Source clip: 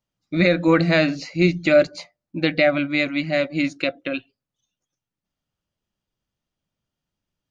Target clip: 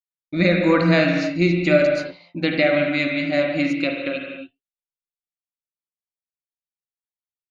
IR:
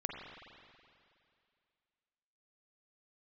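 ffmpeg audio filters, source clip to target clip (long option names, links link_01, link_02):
-filter_complex "[0:a]agate=range=-33dB:threshold=-35dB:ratio=3:detection=peak[link_01];[1:a]atrim=start_sample=2205,afade=type=out:start_time=0.34:duration=0.01,atrim=end_sample=15435[link_02];[link_01][link_02]afir=irnorm=-1:irlink=0"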